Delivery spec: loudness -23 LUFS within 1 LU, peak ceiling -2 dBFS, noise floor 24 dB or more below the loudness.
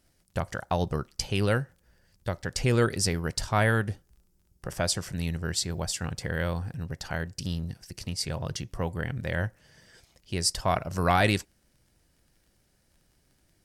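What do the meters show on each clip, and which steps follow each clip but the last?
tick rate 21 per s; loudness -29.5 LUFS; peak level -10.0 dBFS; loudness target -23.0 LUFS
-> de-click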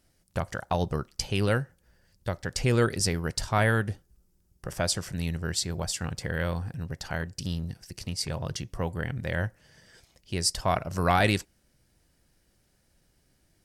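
tick rate 0.29 per s; loudness -29.5 LUFS; peak level -10.0 dBFS; loudness target -23.0 LUFS
-> trim +6.5 dB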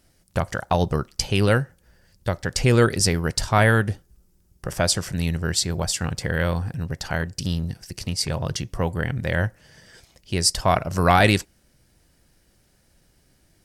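loudness -23.0 LUFS; peak level -3.5 dBFS; noise floor -62 dBFS

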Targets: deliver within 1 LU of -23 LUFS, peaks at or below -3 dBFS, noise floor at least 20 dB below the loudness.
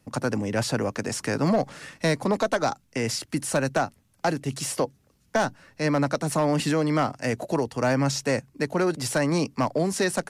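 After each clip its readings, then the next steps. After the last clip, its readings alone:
clipped samples 0.6%; clipping level -15.5 dBFS; loudness -26.0 LUFS; peak level -15.5 dBFS; loudness target -23.0 LUFS
-> clip repair -15.5 dBFS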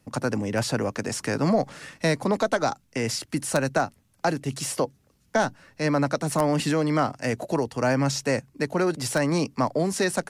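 clipped samples 0.0%; loudness -26.0 LUFS; peak level -6.5 dBFS; loudness target -23.0 LUFS
-> trim +3 dB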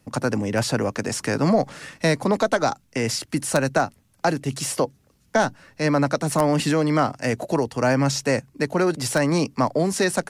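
loudness -23.0 LUFS; peak level -3.5 dBFS; noise floor -62 dBFS

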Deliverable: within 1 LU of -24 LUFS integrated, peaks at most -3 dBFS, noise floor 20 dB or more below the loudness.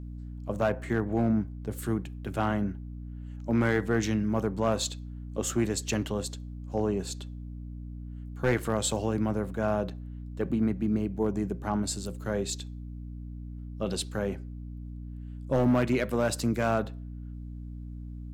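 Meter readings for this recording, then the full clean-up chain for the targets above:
clipped samples 0.5%; clipping level -18.0 dBFS; hum 60 Hz; highest harmonic 300 Hz; hum level -37 dBFS; loudness -29.5 LUFS; peak level -18.0 dBFS; loudness target -24.0 LUFS
-> clip repair -18 dBFS; hum notches 60/120/180/240/300 Hz; trim +5.5 dB

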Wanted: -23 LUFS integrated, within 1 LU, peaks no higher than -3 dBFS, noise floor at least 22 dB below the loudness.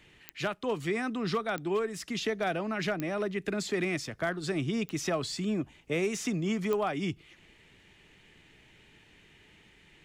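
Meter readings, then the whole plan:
clicks found 5; loudness -32.0 LUFS; peak level -17.5 dBFS; loudness target -23.0 LUFS
-> de-click; trim +9 dB

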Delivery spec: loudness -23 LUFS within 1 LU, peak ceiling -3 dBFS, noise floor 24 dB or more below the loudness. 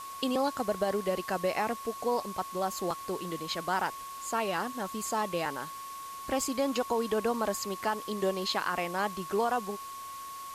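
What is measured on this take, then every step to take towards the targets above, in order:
steady tone 1.1 kHz; tone level -40 dBFS; noise floor -42 dBFS; noise floor target -56 dBFS; loudness -32.0 LUFS; peak level -16.5 dBFS; loudness target -23.0 LUFS
-> band-stop 1.1 kHz, Q 30; noise print and reduce 14 dB; trim +9 dB

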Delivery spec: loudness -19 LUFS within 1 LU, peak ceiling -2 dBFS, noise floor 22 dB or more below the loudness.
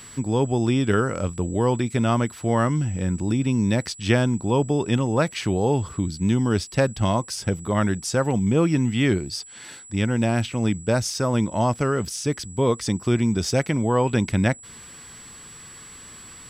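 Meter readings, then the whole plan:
steady tone 7.8 kHz; tone level -42 dBFS; loudness -23.0 LUFS; peak level -6.5 dBFS; loudness target -19.0 LUFS
-> band-stop 7.8 kHz, Q 30; trim +4 dB

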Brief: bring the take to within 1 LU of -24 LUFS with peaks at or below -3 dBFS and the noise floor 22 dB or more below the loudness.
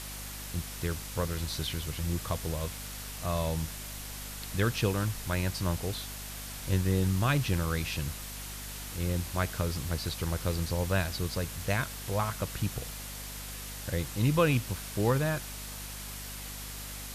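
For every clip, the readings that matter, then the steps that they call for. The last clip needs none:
hum 50 Hz; highest harmonic 250 Hz; hum level -43 dBFS; noise floor -41 dBFS; noise floor target -55 dBFS; loudness -32.5 LUFS; peak level -12.0 dBFS; loudness target -24.0 LUFS
-> de-hum 50 Hz, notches 5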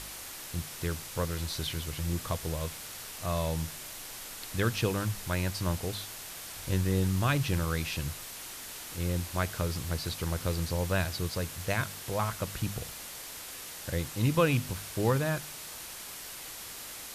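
hum not found; noise floor -43 dBFS; noise floor target -55 dBFS
-> noise reduction 12 dB, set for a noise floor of -43 dBFS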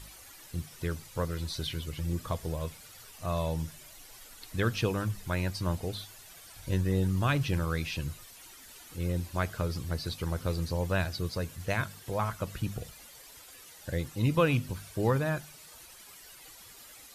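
noise floor -52 dBFS; noise floor target -55 dBFS
-> noise reduction 6 dB, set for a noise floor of -52 dBFS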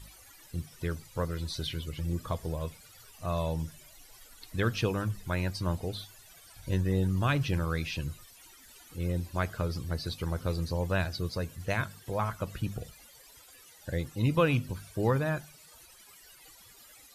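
noise floor -55 dBFS; loudness -32.5 LUFS; peak level -13.0 dBFS; loudness target -24.0 LUFS
-> trim +8.5 dB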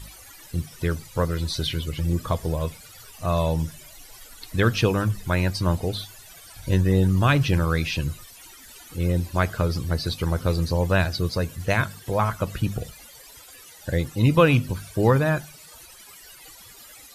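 loudness -24.0 LUFS; peak level -4.5 dBFS; noise floor -47 dBFS

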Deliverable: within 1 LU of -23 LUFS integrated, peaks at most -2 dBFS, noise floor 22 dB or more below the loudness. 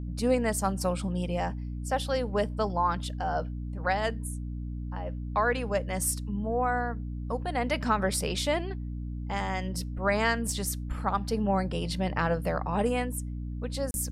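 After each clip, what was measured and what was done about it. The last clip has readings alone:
dropouts 1; longest dropout 31 ms; hum 60 Hz; highest harmonic 300 Hz; hum level -32 dBFS; loudness -30.0 LUFS; peak level -13.0 dBFS; loudness target -23.0 LUFS
-> interpolate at 13.91 s, 31 ms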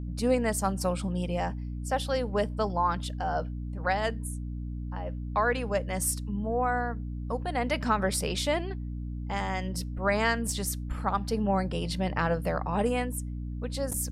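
dropouts 0; hum 60 Hz; highest harmonic 300 Hz; hum level -32 dBFS
-> de-hum 60 Hz, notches 5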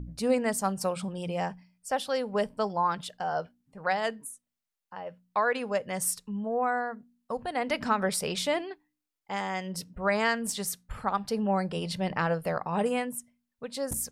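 hum not found; loudness -30.5 LUFS; peak level -12.5 dBFS; loudness target -23.0 LUFS
-> trim +7.5 dB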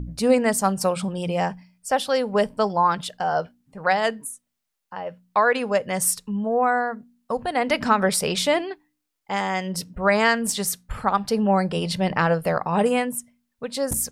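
loudness -23.0 LUFS; peak level -5.0 dBFS; noise floor -79 dBFS

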